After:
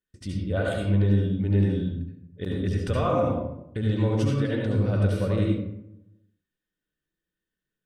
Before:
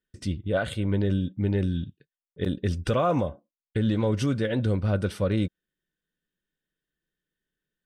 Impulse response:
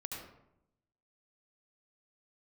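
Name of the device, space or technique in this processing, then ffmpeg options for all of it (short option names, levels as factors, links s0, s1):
bathroom: -filter_complex "[1:a]atrim=start_sample=2205[s0];[0:a][s0]afir=irnorm=-1:irlink=0"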